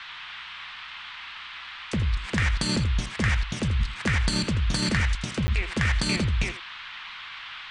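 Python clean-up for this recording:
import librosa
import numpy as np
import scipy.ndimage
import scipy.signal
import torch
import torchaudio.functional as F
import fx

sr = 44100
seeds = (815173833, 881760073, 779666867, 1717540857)

y = fx.notch(x, sr, hz=2100.0, q=30.0)
y = fx.fix_interpolate(y, sr, at_s=(5.47,), length_ms=10.0)
y = fx.noise_reduce(y, sr, print_start_s=0.67, print_end_s=1.17, reduce_db=30.0)
y = fx.fix_echo_inverse(y, sr, delay_ms=82, level_db=-12.5)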